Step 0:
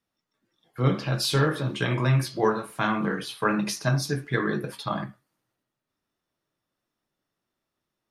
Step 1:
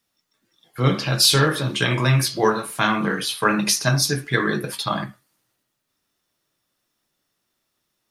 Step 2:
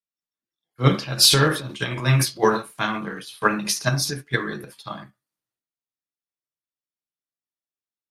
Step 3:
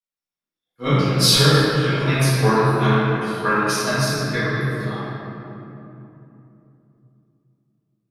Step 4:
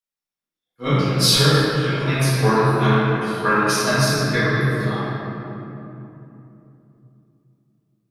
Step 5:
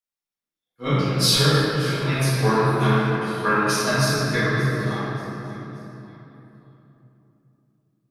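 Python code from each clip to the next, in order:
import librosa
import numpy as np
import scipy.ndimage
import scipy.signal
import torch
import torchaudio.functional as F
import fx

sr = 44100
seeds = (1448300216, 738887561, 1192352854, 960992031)

y1 = fx.high_shelf(x, sr, hz=2400.0, db=10.5)
y1 = F.gain(torch.from_numpy(y1), 3.5).numpy()
y2 = fx.transient(y1, sr, attack_db=1, sustain_db=8)
y2 = fx.upward_expand(y2, sr, threshold_db=-33.0, expansion=2.5)
y2 = F.gain(torch.from_numpy(y2), 2.5).numpy()
y3 = fx.room_shoebox(y2, sr, seeds[0], volume_m3=140.0, walls='hard', distance_m=1.8)
y3 = F.gain(torch.from_numpy(y3), -9.5).numpy()
y4 = fx.rider(y3, sr, range_db=4, speed_s=2.0)
y5 = fx.echo_feedback(y4, sr, ms=581, feedback_pct=37, wet_db=-17.0)
y5 = F.gain(torch.from_numpy(y5), -2.5).numpy()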